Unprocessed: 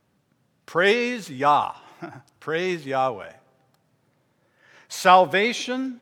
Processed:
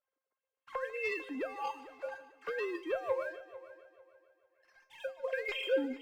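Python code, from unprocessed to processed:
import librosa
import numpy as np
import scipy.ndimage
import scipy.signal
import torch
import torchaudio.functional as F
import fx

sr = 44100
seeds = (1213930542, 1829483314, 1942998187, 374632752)

y = fx.sine_speech(x, sr)
y = fx.over_compress(y, sr, threshold_db=-26.0, ratio=-0.5)
y = fx.leveller(y, sr, passes=2)
y = fx.comb_fb(y, sr, f0_hz=530.0, decay_s=0.26, harmonics='all', damping=0.0, mix_pct=90)
y = fx.echo_heads(y, sr, ms=149, heads='first and third', feedback_pct=43, wet_db=-17.5)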